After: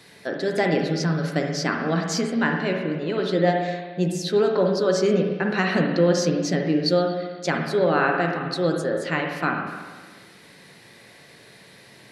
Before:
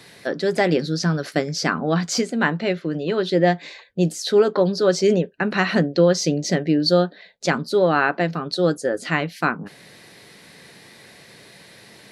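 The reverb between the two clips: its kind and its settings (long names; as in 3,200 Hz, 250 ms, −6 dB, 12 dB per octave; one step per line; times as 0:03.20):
spring reverb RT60 1.4 s, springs 43/52/59 ms, chirp 65 ms, DRR 2 dB
level −4 dB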